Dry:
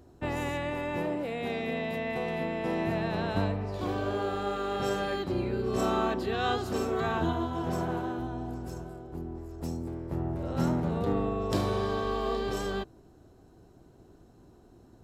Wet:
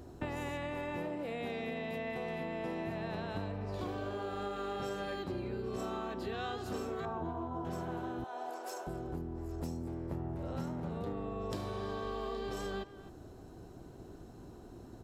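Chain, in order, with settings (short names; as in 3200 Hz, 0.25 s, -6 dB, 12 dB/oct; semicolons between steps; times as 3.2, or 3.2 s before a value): 7.05–7.65 resonant high shelf 1500 Hz -13 dB, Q 1.5; 8.24–8.87 HPF 500 Hz 24 dB/oct; compressor 8:1, threshold -41 dBFS, peak gain reduction 17.5 dB; speakerphone echo 0.26 s, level -14 dB; gain +5 dB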